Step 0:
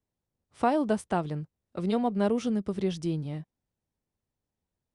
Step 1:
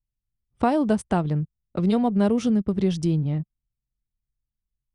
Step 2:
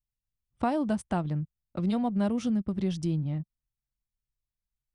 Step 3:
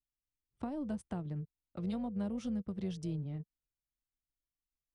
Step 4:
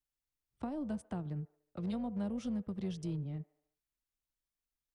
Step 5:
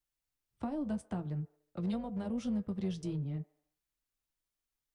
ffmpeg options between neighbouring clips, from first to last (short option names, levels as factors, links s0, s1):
-filter_complex "[0:a]anlmdn=0.0398,bass=f=250:g=7,treble=f=4000:g=2,asplit=2[s0][s1];[s1]acompressor=threshold=0.0282:ratio=6,volume=1.26[s2];[s0][s2]amix=inputs=2:normalize=0"
-af "equalizer=f=430:t=o:w=0.22:g=-10.5,volume=0.501"
-filter_complex "[0:a]acrossover=split=460[s0][s1];[s1]acompressor=threshold=0.0141:ratio=10[s2];[s0][s2]amix=inputs=2:normalize=0,tremolo=f=290:d=0.333,volume=0.422"
-filter_complex "[0:a]acrossover=split=350|2300[s0][s1][s2];[s0]volume=47.3,asoftclip=hard,volume=0.0211[s3];[s1]aecho=1:1:73|146|219|292|365:0.119|0.0701|0.0414|0.0244|0.0144[s4];[s3][s4][s2]amix=inputs=3:normalize=0"
-af "flanger=delay=5.7:depth=4.7:regen=-57:speed=0.54:shape=sinusoidal,volume=2"